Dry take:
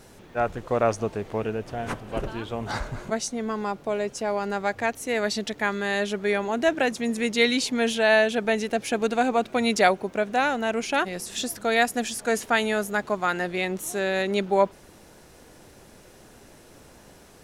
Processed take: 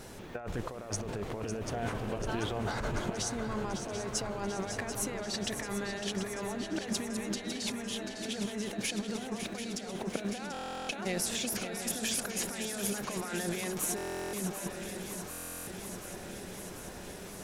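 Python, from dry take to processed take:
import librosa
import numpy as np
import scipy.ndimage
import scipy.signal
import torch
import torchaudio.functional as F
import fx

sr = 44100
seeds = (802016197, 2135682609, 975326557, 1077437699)

y = fx.over_compress(x, sr, threshold_db=-34.0, ratio=-1.0)
y = fx.echo_swing(y, sr, ms=738, ratio=3, feedback_pct=73, wet_db=-9)
y = fx.buffer_glitch(y, sr, at_s=(10.52, 13.96, 15.3), block=1024, repeats=15)
y = y * 10.0 ** (-4.5 / 20.0)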